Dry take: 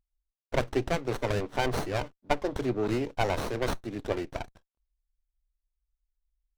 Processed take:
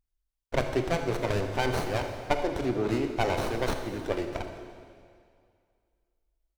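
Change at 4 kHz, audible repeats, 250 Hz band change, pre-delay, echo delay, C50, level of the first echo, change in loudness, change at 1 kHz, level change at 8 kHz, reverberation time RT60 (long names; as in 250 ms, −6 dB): +1.0 dB, 1, +1.5 dB, 23 ms, 78 ms, 6.0 dB, −15.5 dB, +1.0 dB, +1.0 dB, +1.0 dB, 2.2 s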